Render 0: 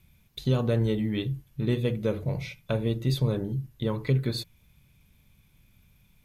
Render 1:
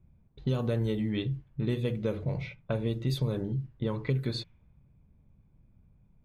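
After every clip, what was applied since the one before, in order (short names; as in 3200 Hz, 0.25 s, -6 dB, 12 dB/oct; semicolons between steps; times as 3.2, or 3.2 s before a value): low-pass opened by the level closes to 710 Hz, open at -21 dBFS; compressor 2:1, threshold -28 dBFS, peak gain reduction 5.5 dB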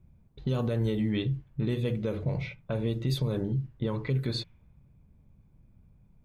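limiter -22 dBFS, peak gain reduction 5.5 dB; gain +2.5 dB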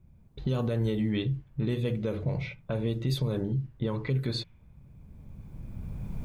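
recorder AGC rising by 14 dB/s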